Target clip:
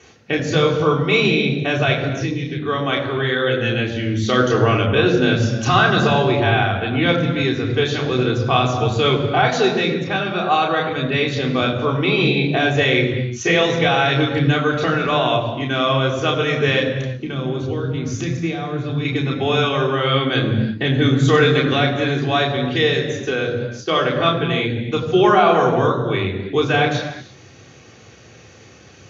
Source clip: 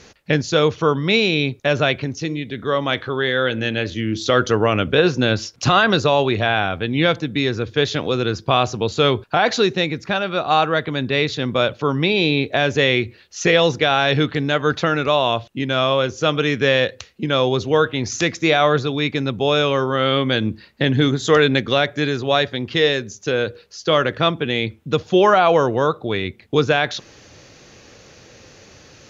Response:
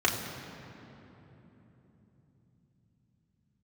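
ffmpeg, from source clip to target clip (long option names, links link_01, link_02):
-filter_complex "[0:a]asettb=1/sr,asplit=3[link_01][link_02][link_03];[link_01]atrim=end=16.804[link_04];[link_02]atrim=start=16.8:end=19.05,asetpts=PTS-STARTPTS,afade=type=in:duration=0.004:curve=qsin,afade=type=out:start_time=2.246:duration=0.004:curve=qsin,acrossover=split=300[link_05][link_06];[link_06]acompressor=threshold=-29dB:ratio=5[link_07];[link_05][link_07]amix=inputs=2:normalize=0[link_08];[link_03]atrim=start=19.046[link_09];[link_04][link_08]acrossfade=duration=0.004:curve1=hsin:curve2=qsin[link_10];[link_10][link_09]acrossfade=duration=0.004:curve1=qsin:curve2=hsin[link_11];[1:a]atrim=start_sample=2205,afade=type=out:start_time=0.42:duration=0.01,atrim=end_sample=18963[link_12];[link_11][link_12]afir=irnorm=-1:irlink=0,volume=-12dB"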